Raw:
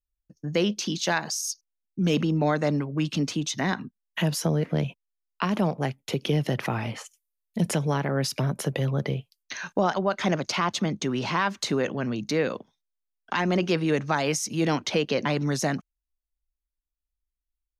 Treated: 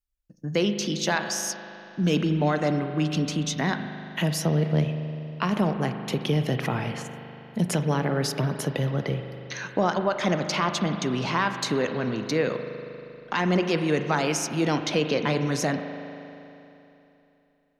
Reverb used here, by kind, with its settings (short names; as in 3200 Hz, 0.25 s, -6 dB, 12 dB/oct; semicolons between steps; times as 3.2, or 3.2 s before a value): spring tank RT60 3.1 s, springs 39 ms, chirp 25 ms, DRR 7 dB